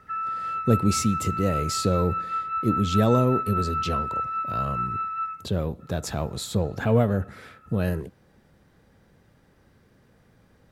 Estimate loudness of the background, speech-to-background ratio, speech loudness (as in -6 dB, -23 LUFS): -28.5 LUFS, 2.5 dB, -26.0 LUFS